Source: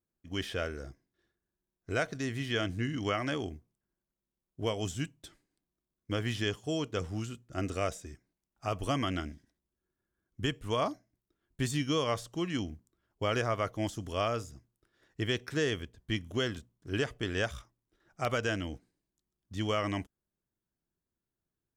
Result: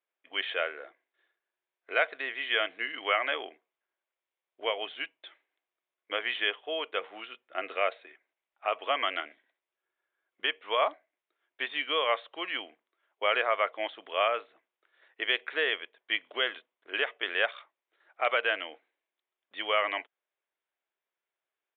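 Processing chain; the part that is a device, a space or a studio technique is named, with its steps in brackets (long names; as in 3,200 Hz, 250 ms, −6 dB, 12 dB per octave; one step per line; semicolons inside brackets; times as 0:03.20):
musical greeting card (downsampling to 8,000 Hz; high-pass filter 520 Hz 24 dB per octave; parametric band 2,200 Hz +6 dB 0.51 octaves)
level +5 dB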